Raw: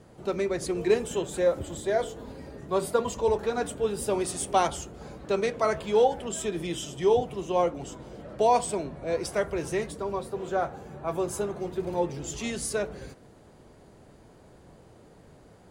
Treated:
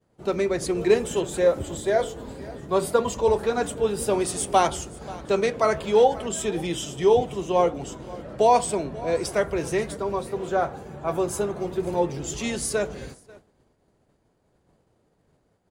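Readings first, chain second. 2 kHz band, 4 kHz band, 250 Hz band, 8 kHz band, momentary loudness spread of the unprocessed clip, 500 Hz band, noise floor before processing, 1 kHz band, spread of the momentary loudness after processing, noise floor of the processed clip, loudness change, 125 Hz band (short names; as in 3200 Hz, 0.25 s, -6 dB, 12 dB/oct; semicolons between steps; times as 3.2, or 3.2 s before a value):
+4.0 dB, +4.0 dB, +4.0 dB, +4.0 dB, 12 LU, +4.0 dB, -54 dBFS, +4.0 dB, 12 LU, -68 dBFS, +4.0 dB, +4.0 dB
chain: echo 0.535 s -19.5 dB; expander -41 dBFS; gain +4 dB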